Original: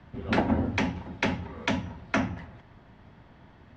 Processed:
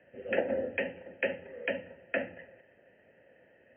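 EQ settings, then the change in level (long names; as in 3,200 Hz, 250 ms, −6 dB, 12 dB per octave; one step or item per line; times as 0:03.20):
formant filter e
linear-phase brick-wall low-pass 3,200 Hz
+7.5 dB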